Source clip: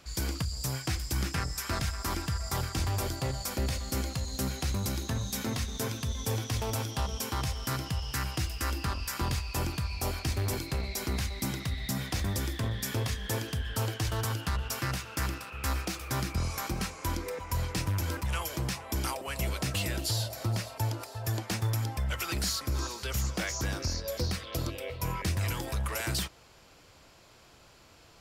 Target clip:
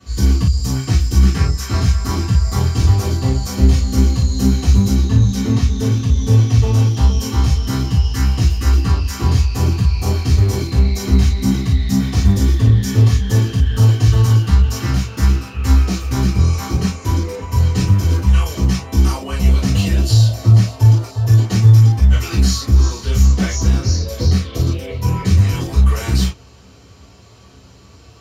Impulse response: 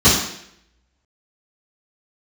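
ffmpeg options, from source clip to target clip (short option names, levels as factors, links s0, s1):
-filter_complex "[0:a]asettb=1/sr,asplit=3[s0][s1][s2];[s0]atrim=end=4.964[s3];[s1]atrim=start=4.96:end=6.9,asetpts=PTS-STARTPTS,afade=t=in:d=0.004:c=qsin,afade=t=out:st=1.936:d=0.004:c=qsin,highshelf=f=7200:g=-7[s4];[s2]atrim=start=6.896[s5];[s3][s4]acrossfade=d=0.004:c1=hsin:c2=qsin[s6];[s6][s5]acrossfade=d=0.004:c1=qsin:c2=hsin[s7];[1:a]atrim=start_sample=2205,atrim=end_sample=3087[s8];[s7][s8]afir=irnorm=-1:irlink=0,volume=0.178"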